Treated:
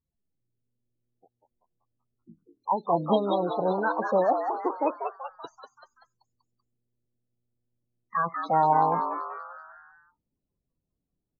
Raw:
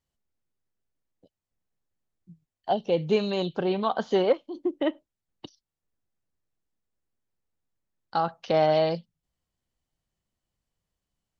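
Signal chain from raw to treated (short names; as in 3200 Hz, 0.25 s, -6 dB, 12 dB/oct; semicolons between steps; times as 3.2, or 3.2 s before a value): formant shift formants +5 st; loudest bins only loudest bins 16; frequency-shifting echo 0.192 s, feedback 51%, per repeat +120 Hz, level -6.5 dB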